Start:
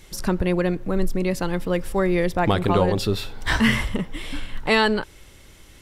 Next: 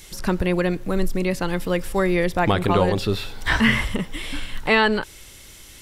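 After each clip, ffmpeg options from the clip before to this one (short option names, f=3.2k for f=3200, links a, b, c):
-filter_complex "[0:a]acrossover=split=2900[a][b];[b]acompressor=threshold=-45dB:ratio=4:attack=1:release=60[c];[a][c]amix=inputs=2:normalize=0,highshelf=f=2.6k:g=11"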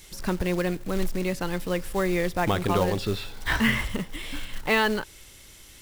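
-af "acrusher=bits=4:mode=log:mix=0:aa=0.000001,volume=-5dB"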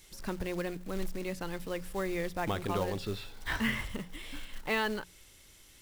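-af "bandreject=f=60:t=h:w=6,bandreject=f=120:t=h:w=6,bandreject=f=180:t=h:w=6,volume=-8.5dB"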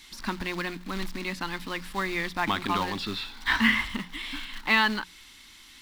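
-af "equalizer=f=125:t=o:w=1:g=-7,equalizer=f=250:t=o:w=1:g=12,equalizer=f=500:t=o:w=1:g=-11,equalizer=f=1k:t=o:w=1:g=11,equalizer=f=2k:t=o:w=1:g=7,equalizer=f=4k:t=o:w=1:g=11"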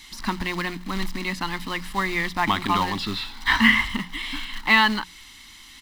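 -af "aecho=1:1:1:0.34,volume=4dB"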